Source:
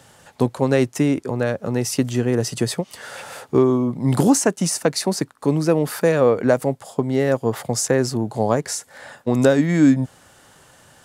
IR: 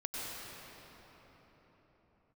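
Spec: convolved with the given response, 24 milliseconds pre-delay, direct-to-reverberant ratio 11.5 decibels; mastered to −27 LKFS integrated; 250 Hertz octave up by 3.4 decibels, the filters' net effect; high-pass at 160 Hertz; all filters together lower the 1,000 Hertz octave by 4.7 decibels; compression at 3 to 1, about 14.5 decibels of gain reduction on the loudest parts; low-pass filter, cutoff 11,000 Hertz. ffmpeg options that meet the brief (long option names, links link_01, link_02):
-filter_complex "[0:a]highpass=160,lowpass=11000,equalizer=frequency=250:width_type=o:gain=5,equalizer=frequency=1000:width_type=o:gain=-7,acompressor=threshold=-27dB:ratio=3,asplit=2[link_01][link_02];[1:a]atrim=start_sample=2205,adelay=24[link_03];[link_02][link_03]afir=irnorm=-1:irlink=0,volume=-14.5dB[link_04];[link_01][link_04]amix=inputs=2:normalize=0,volume=1.5dB"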